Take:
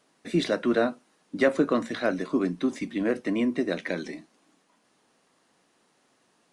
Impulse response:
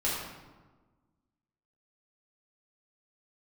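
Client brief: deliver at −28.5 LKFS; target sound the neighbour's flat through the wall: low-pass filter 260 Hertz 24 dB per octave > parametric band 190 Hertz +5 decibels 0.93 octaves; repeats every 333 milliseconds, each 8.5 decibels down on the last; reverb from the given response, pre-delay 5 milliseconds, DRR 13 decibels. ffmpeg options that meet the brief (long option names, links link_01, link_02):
-filter_complex "[0:a]aecho=1:1:333|666|999|1332:0.376|0.143|0.0543|0.0206,asplit=2[link_01][link_02];[1:a]atrim=start_sample=2205,adelay=5[link_03];[link_02][link_03]afir=irnorm=-1:irlink=0,volume=-21.5dB[link_04];[link_01][link_04]amix=inputs=2:normalize=0,lowpass=frequency=260:width=0.5412,lowpass=frequency=260:width=1.3066,equalizer=frequency=190:width_type=o:width=0.93:gain=5,volume=1dB"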